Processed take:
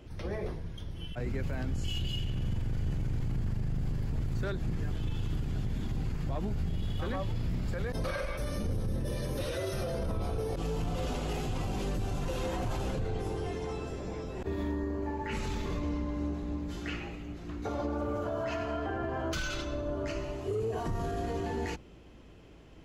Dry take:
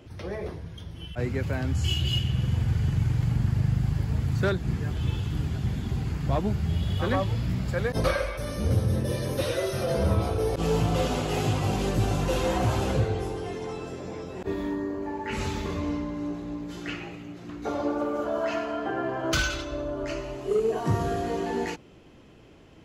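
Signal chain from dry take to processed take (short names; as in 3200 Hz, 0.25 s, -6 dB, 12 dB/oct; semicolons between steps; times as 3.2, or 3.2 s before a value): octaver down 2 oct, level +1 dB; limiter -22.5 dBFS, peak gain reduction 11.5 dB; gain -3 dB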